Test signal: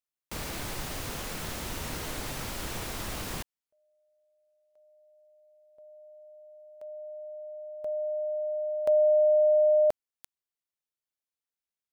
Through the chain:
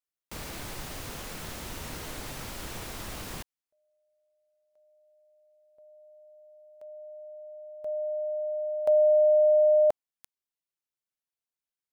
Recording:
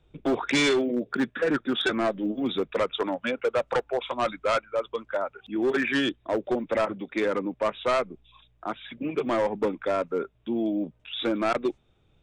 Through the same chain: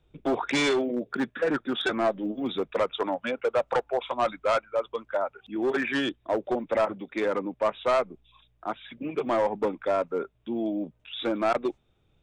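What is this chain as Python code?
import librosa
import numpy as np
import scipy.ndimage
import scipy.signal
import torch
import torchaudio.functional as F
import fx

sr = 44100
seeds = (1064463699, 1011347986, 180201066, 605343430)

y = fx.dynamic_eq(x, sr, hz=790.0, q=1.2, threshold_db=-36.0, ratio=4.0, max_db=6)
y = y * 10.0 ** (-3.0 / 20.0)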